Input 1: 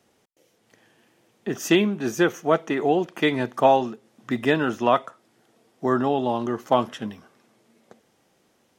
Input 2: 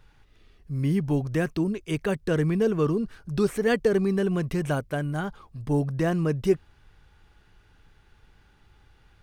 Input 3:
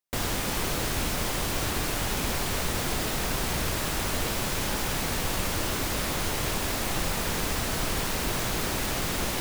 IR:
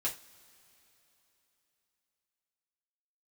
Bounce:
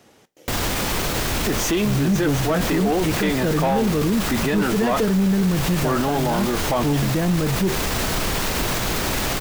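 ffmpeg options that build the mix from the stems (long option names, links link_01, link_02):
-filter_complex "[0:a]volume=3dB,asplit=2[link_01][link_02];[link_02]volume=-13.5dB[link_03];[1:a]equalizer=frequency=200:width=3.6:gain=10.5,adelay=1150,volume=1dB,asplit=2[link_04][link_05];[link_05]volume=-9dB[link_06];[2:a]adelay=350,volume=1.5dB[link_07];[3:a]atrim=start_sample=2205[link_08];[link_03][link_06]amix=inputs=2:normalize=0[link_09];[link_09][link_08]afir=irnorm=-1:irlink=0[link_10];[link_01][link_04][link_07][link_10]amix=inputs=4:normalize=0,equalizer=frequency=10000:width=1.8:gain=-3,acontrast=82,alimiter=limit=-13.5dB:level=0:latency=1:release=31"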